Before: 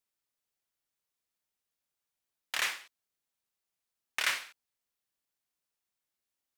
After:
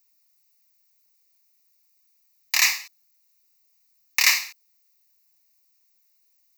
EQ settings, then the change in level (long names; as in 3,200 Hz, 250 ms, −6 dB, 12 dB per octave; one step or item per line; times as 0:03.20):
spectral tilt +4.5 dB per octave
parametric band 190 Hz +10 dB 0.81 octaves
phaser with its sweep stopped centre 2,200 Hz, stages 8
+8.0 dB